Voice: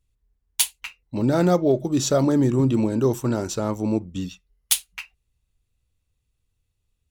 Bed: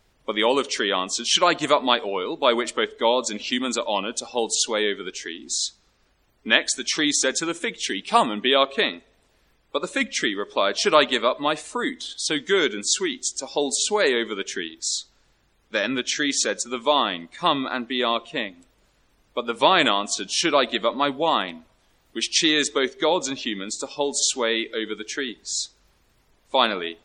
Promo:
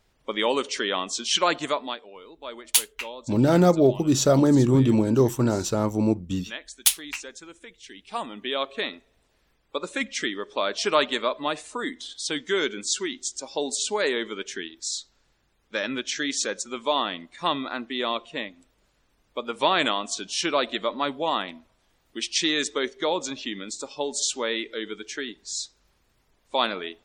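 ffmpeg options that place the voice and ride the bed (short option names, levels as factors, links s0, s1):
-filter_complex "[0:a]adelay=2150,volume=1.12[s0];[1:a]volume=3.35,afade=t=out:st=1.52:d=0.49:silence=0.177828,afade=t=in:st=7.88:d=1.44:silence=0.199526[s1];[s0][s1]amix=inputs=2:normalize=0"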